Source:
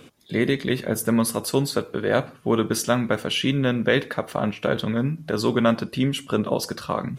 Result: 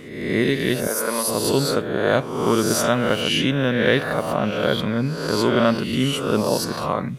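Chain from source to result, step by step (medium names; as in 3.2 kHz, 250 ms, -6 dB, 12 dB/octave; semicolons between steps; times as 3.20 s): reverse spectral sustain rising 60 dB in 0.96 s; 0.87–1.28 s: high-pass 450 Hz 12 dB/octave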